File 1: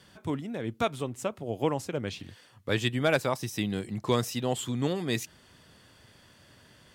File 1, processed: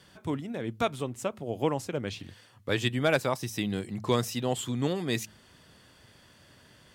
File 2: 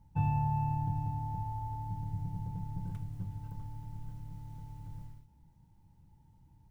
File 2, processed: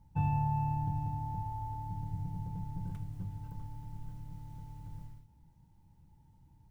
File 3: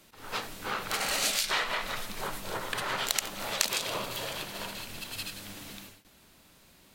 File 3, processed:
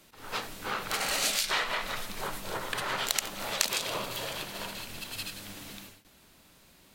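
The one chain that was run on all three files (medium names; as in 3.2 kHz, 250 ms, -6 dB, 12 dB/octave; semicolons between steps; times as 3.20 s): de-hum 107.3 Hz, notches 2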